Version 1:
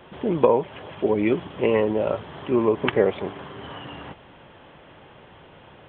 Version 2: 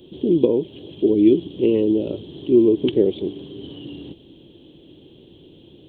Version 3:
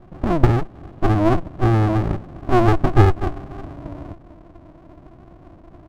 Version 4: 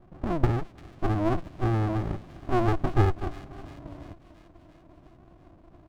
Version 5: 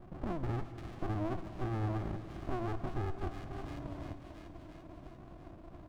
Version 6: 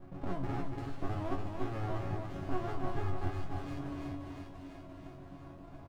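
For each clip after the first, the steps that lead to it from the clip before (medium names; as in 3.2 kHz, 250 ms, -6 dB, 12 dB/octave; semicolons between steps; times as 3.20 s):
FFT filter 100 Hz 0 dB, 220 Hz +3 dB, 330 Hz +11 dB, 650 Hz -13 dB, 1.3 kHz -26 dB, 2.1 kHz -20 dB, 3.2 kHz +4 dB, 4.6 kHz +9 dB
comb 2.2 ms, depth 37%; low-pass sweep 770 Hz -> 350 Hz, 1.62–4.33 s; sliding maximum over 65 samples; trim +1.5 dB
feedback echo behind a high-pass 344 ms, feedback 65%, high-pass 2.6 kHz, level -10.5 dB; trim -9 dB
peak limiter -20.5 dBFS, peak gain reduction 10 dB; compression 2:1, threshold -43 dBFS, peak gain reduction 10.5 dB; on a send at -10 dB: reverberation RT60 3.0 s, pre-delay 7 ms; on the sum: trim +2 dB
chord resonator F#2 fifth, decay 0.22 s; on a send: delay 286 ms -5 dB; on the sum: trim +10.5 dB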